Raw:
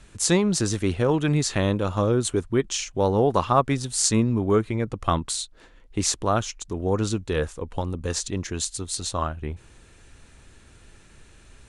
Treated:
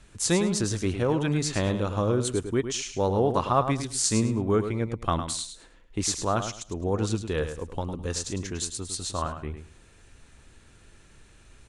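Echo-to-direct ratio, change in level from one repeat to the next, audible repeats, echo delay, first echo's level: -9.0 dB, -13.5 dB, 2, 105 ms, -9.0 dB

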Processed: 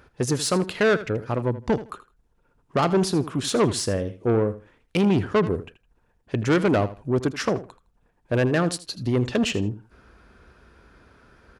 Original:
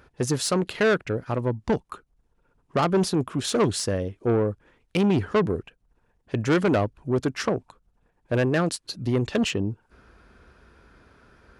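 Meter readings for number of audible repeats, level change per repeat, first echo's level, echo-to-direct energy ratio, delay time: 2, -14.0 dB, -15.0 dB, -15.0 dB, 80 ms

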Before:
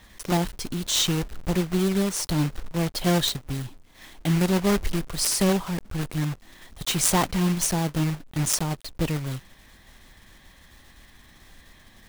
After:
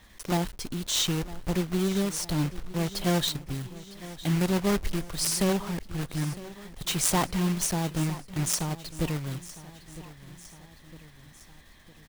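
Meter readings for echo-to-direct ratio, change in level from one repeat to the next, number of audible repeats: -15.5 dB, -5.0 dB, 3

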